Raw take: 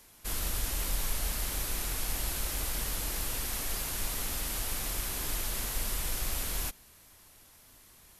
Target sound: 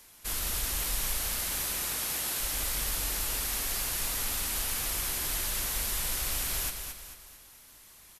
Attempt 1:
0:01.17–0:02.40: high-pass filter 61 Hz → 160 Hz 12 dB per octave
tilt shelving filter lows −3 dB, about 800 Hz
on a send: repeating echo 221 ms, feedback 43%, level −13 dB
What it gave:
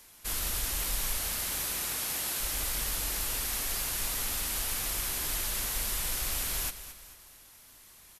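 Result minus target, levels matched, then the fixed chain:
echo-to-direct −6 dB
0:01.17–0:02.40: high-pass filter 61 Hz → 160 Hz 12 dB per octave
tilt shelving filter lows −3 dB, about 800 Hz
on a send: repeating echo 221 ms, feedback 43%, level −7 dB

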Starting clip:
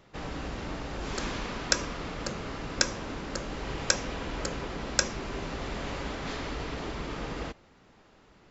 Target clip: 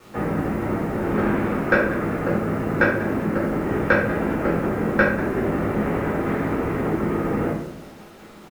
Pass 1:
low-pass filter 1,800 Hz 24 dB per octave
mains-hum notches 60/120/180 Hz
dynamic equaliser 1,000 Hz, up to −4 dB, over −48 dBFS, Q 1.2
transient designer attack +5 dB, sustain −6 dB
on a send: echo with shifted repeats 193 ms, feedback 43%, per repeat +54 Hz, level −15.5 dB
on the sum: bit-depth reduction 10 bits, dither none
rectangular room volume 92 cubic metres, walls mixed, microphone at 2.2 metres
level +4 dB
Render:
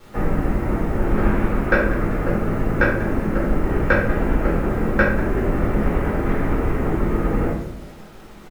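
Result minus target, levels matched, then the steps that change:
125 Hz band +3.0 dB
add after dynamic equaliser: high-pass filter 110 Hz 12 dB per octave

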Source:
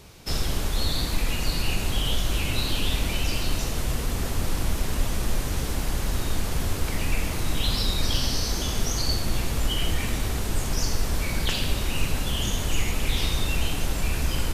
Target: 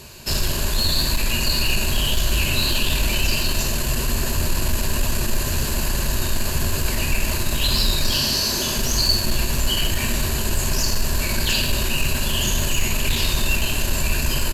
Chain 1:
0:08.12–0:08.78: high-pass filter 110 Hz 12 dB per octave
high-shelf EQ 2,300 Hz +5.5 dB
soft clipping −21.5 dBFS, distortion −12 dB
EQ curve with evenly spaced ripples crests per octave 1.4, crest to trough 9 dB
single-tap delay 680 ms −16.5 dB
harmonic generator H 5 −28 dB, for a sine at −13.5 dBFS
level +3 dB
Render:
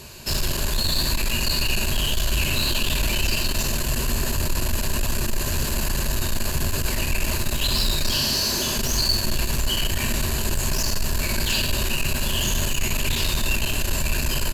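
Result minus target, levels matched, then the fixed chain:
soft clipping: distortion +11 dB
0:08.12–0:08.78: high-pass filter 110 Hz 12 dB per octave
high-shelf EQ 2,300 Hz +5.5 dB
soft clipping −12.5 dBFS, distortion −24 dB
EQ curve with evenly spaced ripples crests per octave 1.4, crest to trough 9 dB
single-tap delay 680 ms −16.5 dB
harmonic generator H 5 −28 dB, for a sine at −13.5 dBFS
level +3 dB

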